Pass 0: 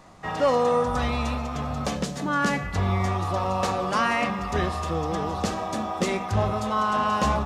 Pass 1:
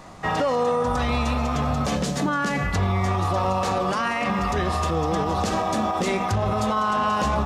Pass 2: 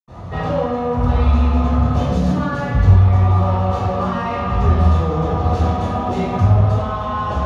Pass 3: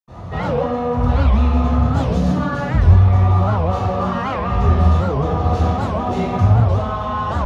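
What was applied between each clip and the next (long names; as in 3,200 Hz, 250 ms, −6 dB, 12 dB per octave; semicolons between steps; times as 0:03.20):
brickwall limiter −21.5 dBFS, peak gain reduction 11 dB; level +7 dB
speech leveller 0.5 s; soft clipping −21 dBFS, distortion −14 dB; convolution reverb, pre-delay 77 ms; level −9.5 dB
wow of a warped record 78 rpm, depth 250 cents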